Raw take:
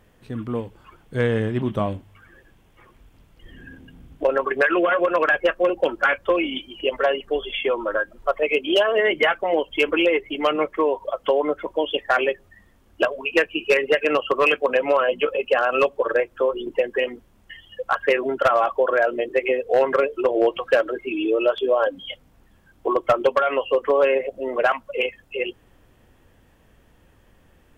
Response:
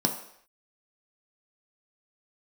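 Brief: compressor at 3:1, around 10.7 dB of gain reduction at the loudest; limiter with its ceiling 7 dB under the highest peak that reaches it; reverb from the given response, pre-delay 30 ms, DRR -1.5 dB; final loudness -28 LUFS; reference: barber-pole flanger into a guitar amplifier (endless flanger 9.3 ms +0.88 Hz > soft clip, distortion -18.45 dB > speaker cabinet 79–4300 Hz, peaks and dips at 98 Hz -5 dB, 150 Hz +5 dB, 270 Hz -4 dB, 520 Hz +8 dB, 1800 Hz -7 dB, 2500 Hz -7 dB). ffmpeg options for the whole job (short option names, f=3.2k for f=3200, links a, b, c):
-filter_complex "[0:a]acompressor=threshold=-29dB:ratio=3,alimiter=limit=-22.5dB:level=0:latency=1,asplit=2[a][b];[1:a]atrim=start_sample=2205,adelay=30[c];[b][c]afir=irnorm=-1:irlink=0,volume=-7.5dB[d];[a][d]amix=inputs=2:normalize=0,asplit=2[e][f];[f]adelay=9.3,afreqshift=0.88[g];[e][g]amix=inputs=2:normalize=1,asoftclip=threshold=-20dB,highpass=79,equalizer=f=98:t=q:w=4:g=-5,equalizer=f=150:t=q:w=4:g=5,equalizer=f=270:t=q:w=4:g=-4,equalizer=f=520:t=q:w=4:g=8,equalizer=f=1.8k:t=q:w=4:g=-7,equalizer=f=2.5k:t=q:w=4:g=-7,lowpass=f=4.3k:w=0.5412,lowpass=f=4.3k:w=1.3066,volume=0.5dB"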